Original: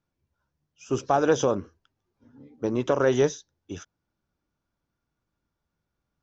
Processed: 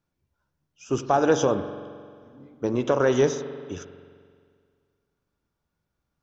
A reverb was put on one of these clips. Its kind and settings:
spring reverb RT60 2 s, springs 44 ms, chirp 25 ms, DRR 10 dB
level +1 dB

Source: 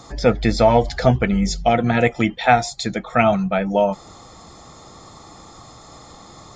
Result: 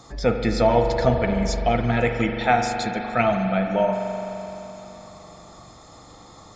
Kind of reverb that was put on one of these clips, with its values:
spring reverb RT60 3.5 s, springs 42 ms, chirp 35 ms, DRR 4 dB
level −5 dB

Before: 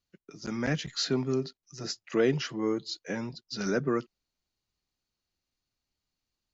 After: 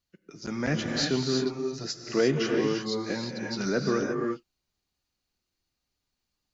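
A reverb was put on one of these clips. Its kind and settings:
reverb whose tail is shaped and stops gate 380 ms rising, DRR 1.5 dB
level +1 dB

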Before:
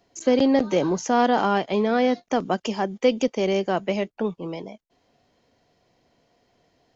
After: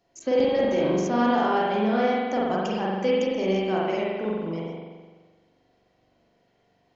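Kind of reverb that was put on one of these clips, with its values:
spring reverb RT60 1.4 s, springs 42 ms, chirp 45 ms, DRR −5.5 dB
level −7.5 dB

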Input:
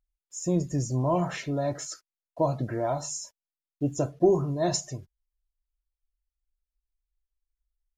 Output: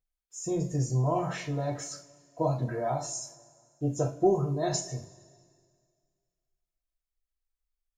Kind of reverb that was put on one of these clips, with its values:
coupled-rooms reverb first 0.28 s, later 2 s, from −22 dB, DRR −2 dB
level −5.5 dB

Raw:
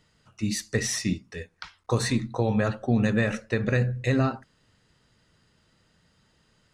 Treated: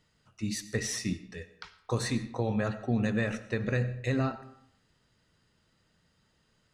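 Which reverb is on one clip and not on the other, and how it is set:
comb and all-pass reverb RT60 0.7 s, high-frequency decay 0.7×, pre-delay 55 ms, DRR 14.5 dB
level −5.5 dB

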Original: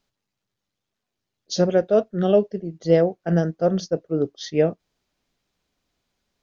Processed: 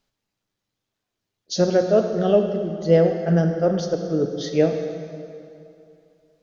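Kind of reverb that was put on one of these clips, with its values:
dense smooth reverb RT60 2.6 s, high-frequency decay 0.8×, DRR 4.5 dB

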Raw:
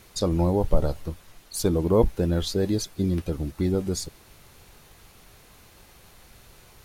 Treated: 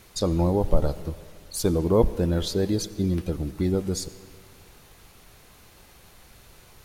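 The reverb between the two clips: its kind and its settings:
comb and all-pass reverb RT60 2.1 s, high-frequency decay 0.75×, pre-delay 40 ms, DRR 16 dB

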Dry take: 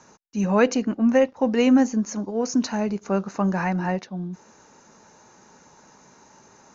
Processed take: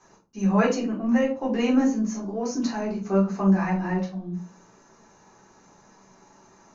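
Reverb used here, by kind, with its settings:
rectangular room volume 170 cubic metres, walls furnished, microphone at 3.8 metres
level −11 dB

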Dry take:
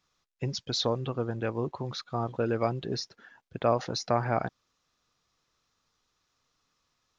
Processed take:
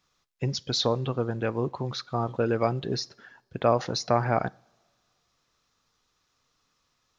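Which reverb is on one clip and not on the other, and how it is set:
coupled-rooms reverb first 0.39 s, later 1.9 s, from −21 dB, DRR 19.5 dB
level +3 dB

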